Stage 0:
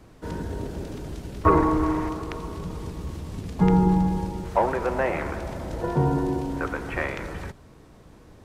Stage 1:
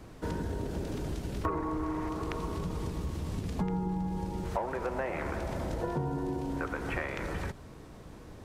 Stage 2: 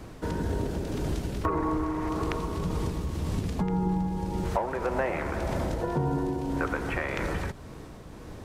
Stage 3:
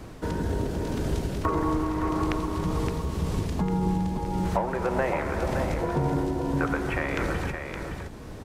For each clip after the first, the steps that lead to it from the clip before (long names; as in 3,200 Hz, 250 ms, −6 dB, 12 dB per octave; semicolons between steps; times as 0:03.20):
downward compressor 6 to 1, threshold −32 dBFS, peak gain reduction 17.5 dB; level +1.5 dB
amplitude tremolo 1.8 Hz, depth 28%; level +6 dB
single-tap delay 567 ms −6.5 dB; level +1.5 dB